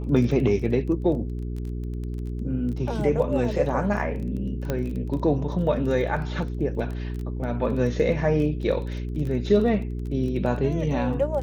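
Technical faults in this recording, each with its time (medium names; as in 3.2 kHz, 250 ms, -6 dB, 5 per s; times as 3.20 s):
crackle 15 per s -31 dBFS
hum 60 Hz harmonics 7 -30 dBFS
4.70 s: pop -13 dBFS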